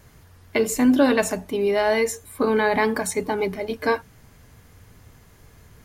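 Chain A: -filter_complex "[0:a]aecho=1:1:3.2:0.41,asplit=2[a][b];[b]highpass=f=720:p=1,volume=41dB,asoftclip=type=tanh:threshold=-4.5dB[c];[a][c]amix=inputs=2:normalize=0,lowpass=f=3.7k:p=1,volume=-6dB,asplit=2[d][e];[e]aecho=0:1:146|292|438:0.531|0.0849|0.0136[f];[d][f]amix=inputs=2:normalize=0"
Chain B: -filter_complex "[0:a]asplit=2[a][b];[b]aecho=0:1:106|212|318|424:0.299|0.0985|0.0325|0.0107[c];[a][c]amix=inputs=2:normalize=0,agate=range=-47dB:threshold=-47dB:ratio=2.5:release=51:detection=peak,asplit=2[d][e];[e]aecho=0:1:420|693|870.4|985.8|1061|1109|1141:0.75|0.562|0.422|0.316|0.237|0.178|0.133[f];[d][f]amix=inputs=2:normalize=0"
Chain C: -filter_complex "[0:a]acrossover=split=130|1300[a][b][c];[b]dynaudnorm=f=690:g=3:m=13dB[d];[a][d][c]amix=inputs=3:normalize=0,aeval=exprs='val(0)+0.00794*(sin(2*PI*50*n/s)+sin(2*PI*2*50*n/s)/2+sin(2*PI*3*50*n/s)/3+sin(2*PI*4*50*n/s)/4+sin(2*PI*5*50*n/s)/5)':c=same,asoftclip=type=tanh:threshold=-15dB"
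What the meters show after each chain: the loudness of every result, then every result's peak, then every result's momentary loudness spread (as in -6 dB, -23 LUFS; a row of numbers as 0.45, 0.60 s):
-11.0, -19.0, -21.0 LUFS; -1.5, -4.0, -15.0 dBFS; 14, 11, 6 LU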